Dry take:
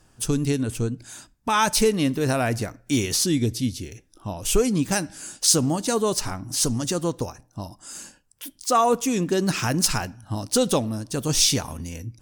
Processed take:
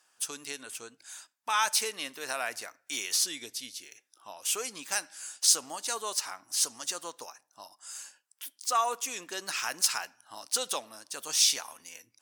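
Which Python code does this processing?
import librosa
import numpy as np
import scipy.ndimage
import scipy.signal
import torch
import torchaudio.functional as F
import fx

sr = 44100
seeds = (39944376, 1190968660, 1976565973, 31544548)

y = scipy.signal.sosfilt(scipy.signal.butter(2, 1000.0, 'highpass', fs=sr, output='sos'), x)
y = y * librosa.db_to_amplitude(-4.0)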